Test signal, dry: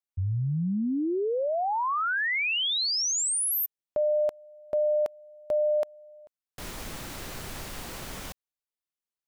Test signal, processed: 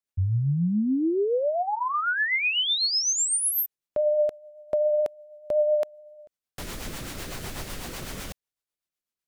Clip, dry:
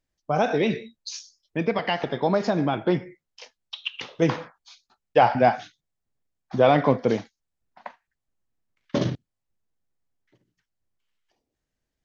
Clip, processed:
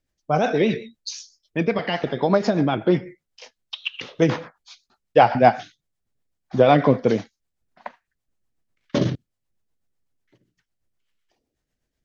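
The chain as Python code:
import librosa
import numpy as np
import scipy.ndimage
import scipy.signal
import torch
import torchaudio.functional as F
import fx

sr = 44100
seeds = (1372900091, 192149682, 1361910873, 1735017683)

y = fx.rotary(x, sr, hz=8.0)
y = y * 10.0 ** (5.0 / 20.0)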